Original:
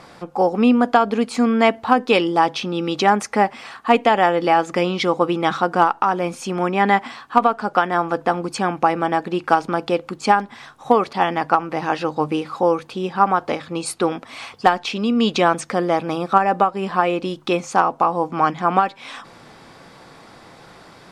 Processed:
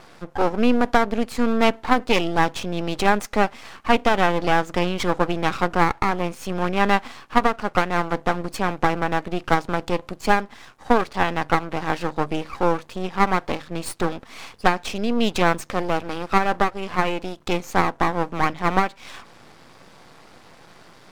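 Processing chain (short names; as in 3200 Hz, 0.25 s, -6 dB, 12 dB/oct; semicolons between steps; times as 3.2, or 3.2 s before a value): 15.7–17.41 resonant low shelf 120 Hz +9.5 dB, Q 3; half-wave rectifier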